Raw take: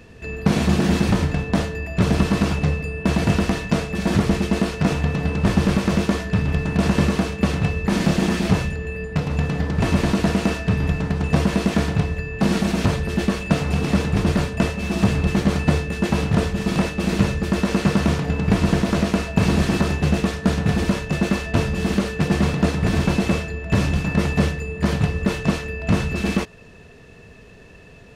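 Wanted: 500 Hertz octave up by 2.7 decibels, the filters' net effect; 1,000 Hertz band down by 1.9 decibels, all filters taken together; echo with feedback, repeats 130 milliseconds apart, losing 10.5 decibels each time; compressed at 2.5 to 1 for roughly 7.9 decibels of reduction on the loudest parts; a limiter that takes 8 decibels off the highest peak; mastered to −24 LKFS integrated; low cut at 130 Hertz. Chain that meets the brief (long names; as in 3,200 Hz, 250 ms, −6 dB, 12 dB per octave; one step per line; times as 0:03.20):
high-pass filter 130 Hz
parametric band 500 Hz +4.5 dB
parametric band 1,000 Hz −4.5 dB
downward compressor 2.5 to 1, threshold −26 dBFS
brickwall limiter −19 dBFS
repeating echo 130 ms, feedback 30%, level −10.5 dB
level +5.5 dB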